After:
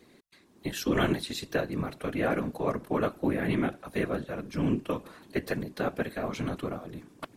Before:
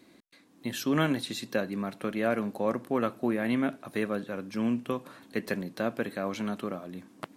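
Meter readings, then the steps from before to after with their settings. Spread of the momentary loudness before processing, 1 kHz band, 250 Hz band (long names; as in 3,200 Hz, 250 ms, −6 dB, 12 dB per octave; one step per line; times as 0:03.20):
9 LU, +0.5 dB, −0.5 dB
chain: random phases in short frames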